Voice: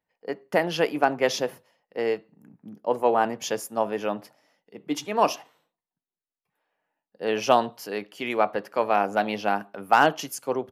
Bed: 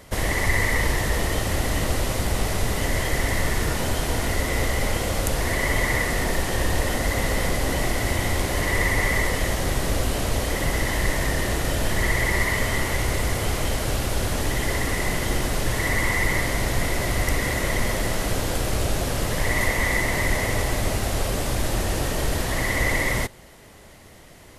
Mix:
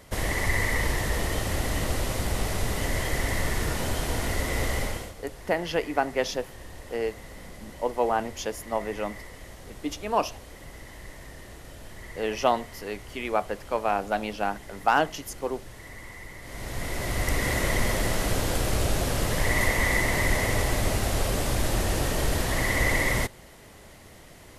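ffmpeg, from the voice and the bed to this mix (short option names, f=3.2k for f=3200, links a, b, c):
-filter_complex "[0:a]adelay=4950,volume=-3.5dB[a];[1:a]volume=15dB,afade=t=out:st=4.77:d=0.37:silence=0.149624,afade=t=in:st=16.41:d=1.13:silence=0.112202[b];[a][b]amix=inputs=2:normalize=0"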